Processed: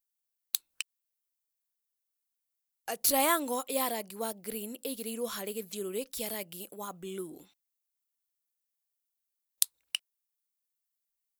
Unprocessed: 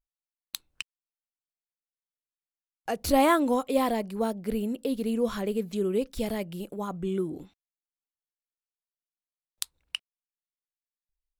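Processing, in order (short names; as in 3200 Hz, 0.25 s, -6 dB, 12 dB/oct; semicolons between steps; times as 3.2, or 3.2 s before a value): RIAA curve recording; gain -5 dB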